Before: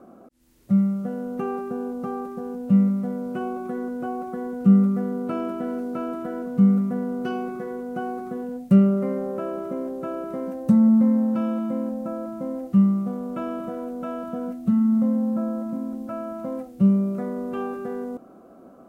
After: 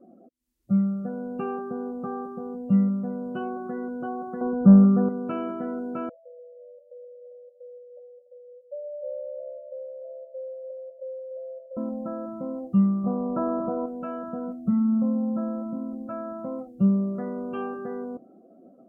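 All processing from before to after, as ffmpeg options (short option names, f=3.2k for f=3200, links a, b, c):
-filter_complex "[0:a]asettb=1/sr,asplit=3[a][b][c];[a]atrim=end=4.414[d];[b]atrim=start=4.41:end=5.09,asetpts=PTS-STARTPTS,afade=t=in:d=0.004:c=qsin,afade=t=out:st=0.676:d=0.004:c=qsin,lowpass=f=1.4k:w=0.5412,lowpass=f=1.4k:w=1.3066,acontrast=79[e];[c]atrim=start=5.086[f];[d][e]acrossfade=d=0.004:c1=hsin:c2=qsin[g];[g][f]acrossfade=d=0.004:c1=qsin:c2=hsin,asettb=1/sr,asplit=3[h][i][j];[h]atrim=end=6.094[k];[i]atrim=start=6.09:end=11.77,asetpts=PTS-STARTPTS,afade=t=in:d=0.004:c=qsin,afade=t=out:st=5.676:d=0.004:c=qsin,asuperpass=centerf=560:order=8:qfactor=4.6,aecho=1:1:290:0.335,atrim=end_sample=250488[l];[j]atrim=start=11.766[m];[k][l]acrossfade=d=0.004:c1=hsin:c2=qsin[n];[n][m]acrossfade=d=0.004:c1=qsin:c2=hsin,asettb=1/sr,asplit=3[o][p][q];[o]atrim=end=13.044[r];[p]atrim=start=13.04:end=13.86,asetpts=PTS-STARTPTS,afade=t=in:d=0.004:c=qsin,afade=t=out:st=0.816:d=0.004:c=qsin,highshelf=f=1.5k:t=q:w=1.5:g=-12.5,acontrast=24[s];[q]atrim=start=13.856[t];[r][s]acrossfade=d=0.004:c1=hsin:c2=qsin[u];[u][t]acrossfade=d=0.004:c1=qsin:c2=hsin,afftdn=nr=23:nf=-43,highshelf=f=2.2k:g=8,volume=-3dB"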